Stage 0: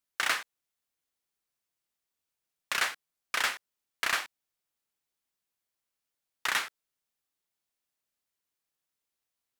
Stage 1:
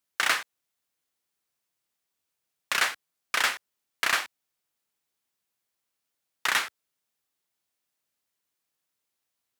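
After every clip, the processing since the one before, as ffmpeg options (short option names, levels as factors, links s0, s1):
-af "highpass=70,volume=1.58"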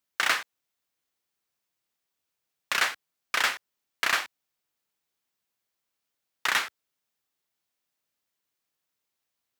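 -af "equalizer=f=10000:w=1.2:g=-3.5"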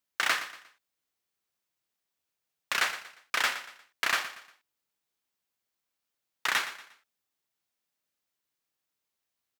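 -af "aecho=1:1:118|236|354:0.224|0.0784|0.0274,volume=0.75"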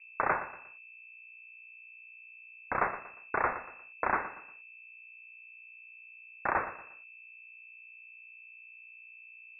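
-af "aeval=exprs='val(0)+0.00282*(sin(2*PI*60*n/s)+sin(2*PI*2*60*n/s)/2+sin(2*PI*3*60*n/s)/3+sin(2*PI*4*60*n/s)/4+sin(2*PI*5*60*n/s)/5)':c=same,lowpass=f=2300:t=q:w=0.5098,lowpass=f=2300:t=q:w=0.6013,lowpass=f=2300:t=q:w=0.9,lowpass=f=2300:t=q:w=2.563,afreqshift=-2700"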